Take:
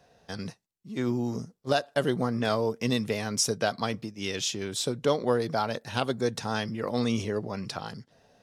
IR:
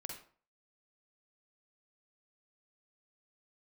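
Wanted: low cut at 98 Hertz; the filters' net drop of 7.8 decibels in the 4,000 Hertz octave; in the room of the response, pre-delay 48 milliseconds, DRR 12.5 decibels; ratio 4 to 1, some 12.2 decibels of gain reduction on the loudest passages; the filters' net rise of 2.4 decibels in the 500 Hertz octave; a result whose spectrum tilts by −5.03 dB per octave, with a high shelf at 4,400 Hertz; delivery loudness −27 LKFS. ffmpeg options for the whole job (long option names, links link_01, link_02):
-filter_complex "[0:a]highpass=98,equalizer=frequency=500:width_type=o:gain=3,equalizer=frequency=4000:width_type=o:gain=-6.5,highshelf=frequency=4400:gain=-6.5,acompressor=threshold=-33dB:ratio=4,asplit=2[link_01][link_02];[1:a]atrim=start_sample=2205,adelay=48[link_03];[link_02][link_03]afir=irnorm=-1:irlink=0,volume=-9.5dB[link_04];[link_01][link_04]amix=inputs=2:normalize=0,volume=10dB"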